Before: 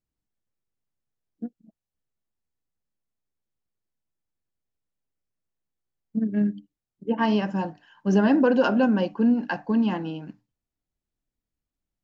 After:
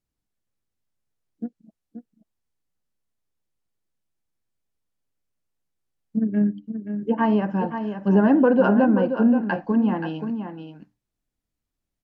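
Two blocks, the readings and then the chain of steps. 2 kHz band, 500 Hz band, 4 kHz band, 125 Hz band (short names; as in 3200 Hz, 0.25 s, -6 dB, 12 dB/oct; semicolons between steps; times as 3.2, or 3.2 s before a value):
+0.5 dB, +3.0 dB, n/a, +3.5 dB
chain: treble ducked by the level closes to 1600 Hz, closed at -20.5 dBFS; on a send: echo 0.528 s -8.5 dB; on the sum: gain +2.5 dB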